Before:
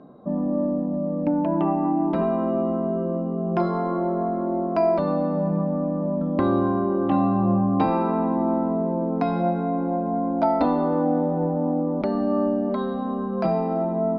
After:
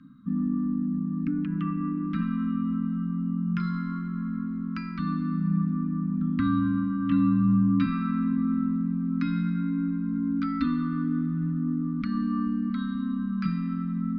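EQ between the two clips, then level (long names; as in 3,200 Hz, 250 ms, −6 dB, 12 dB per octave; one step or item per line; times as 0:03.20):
Chebyshev band-stop filter 280–1,200 Hz, order 5
0.0 dB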